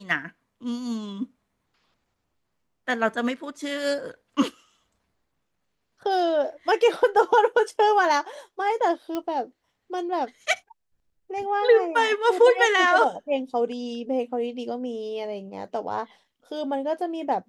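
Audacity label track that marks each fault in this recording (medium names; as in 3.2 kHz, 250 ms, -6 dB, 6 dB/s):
9.150000	9.150000	pop -16 dBFS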